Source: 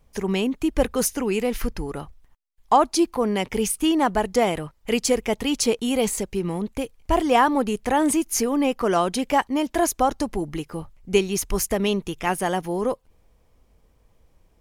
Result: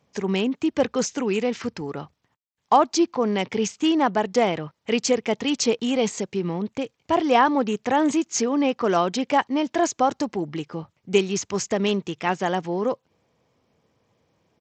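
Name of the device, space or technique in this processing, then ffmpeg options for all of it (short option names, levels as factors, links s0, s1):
Bluetooth headset: -af "highpass=f=110:w=0.5412,highpass=f=110:w=1.3066,aresample=16000,aresample=44100" -ar 32000 -c:a sbc -b:a 64k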